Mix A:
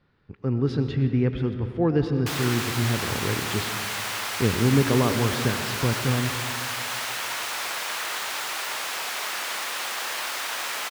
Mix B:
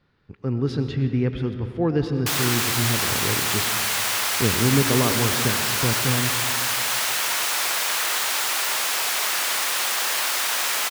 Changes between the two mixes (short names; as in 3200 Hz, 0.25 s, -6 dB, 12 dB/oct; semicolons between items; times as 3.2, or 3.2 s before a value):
background +3.5 dB; master: add high shelf 5100 Hz +8 dB